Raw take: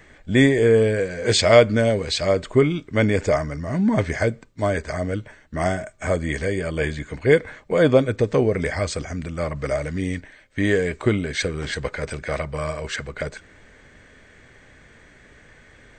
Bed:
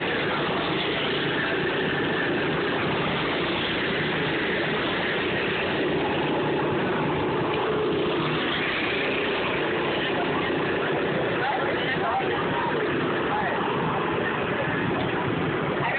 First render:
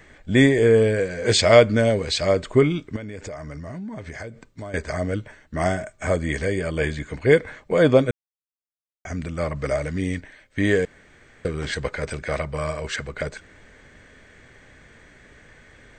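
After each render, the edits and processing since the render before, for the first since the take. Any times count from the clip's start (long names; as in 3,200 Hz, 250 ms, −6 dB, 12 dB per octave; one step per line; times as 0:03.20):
0:02.96–0:04.74: downward compressor 10 to 1, threshold −31 dBFS
0:08.11–0:09.05: silence
0:10.85–0:11.45: fill with room tone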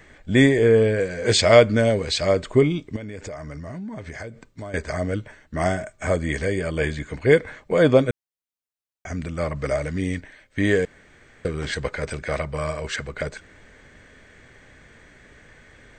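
0:00.57–0:01.00: high-frequency loss of the air 54 metres
0:02.57–0:03.01: parametric band 1,400 Hz −11 dB 0.49 octaves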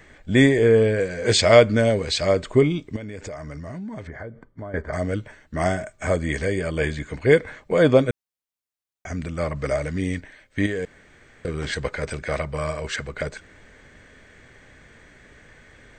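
0:04.07–0:04.93: Savitzky-Golay smoothing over 41 samples
0:10.66–0:11.48: downward compressor, threshold −23 dBFS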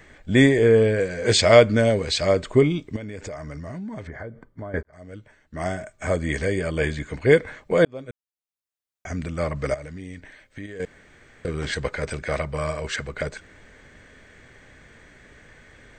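0:04.83–0:06.35: fade in
0:07.85–0:09.10: fade in
0:09.74–0:10.80: downward compressor 3 to 1, threshold −37 dBFS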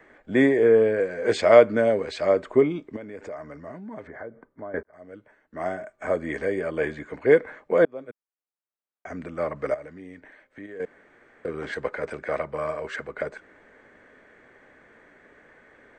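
three-way crossover with the lows and the highs turned down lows −18 dB, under 230 Hz, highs −16 dB, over 2,000 Hz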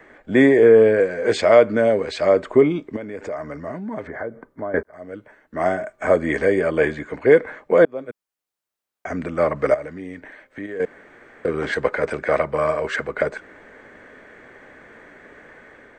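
in parallel at −0.5 dB: brickwall limiter −13 dBFS, peak gain reduction 11 dB
on the sum: automatic gain control gain up to 3 dB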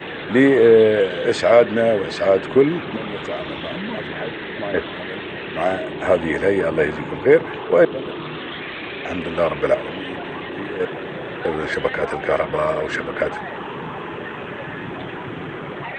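mix in bed −5 dB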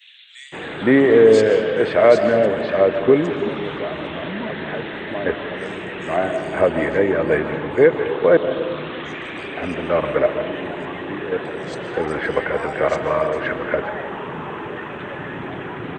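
multiband delay without the direct sound highs, lows 520 ms, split 3,400 Hz
comb and all-pass reverb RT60 1.6 s, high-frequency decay 0.5×, pre-delay 100 ms, DRR 9 dB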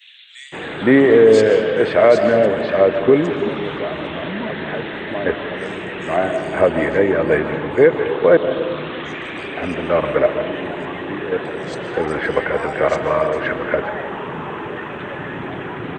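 level +2 dB
brickwall limiter −2 dBFS, peak gain reduction 2.5 dB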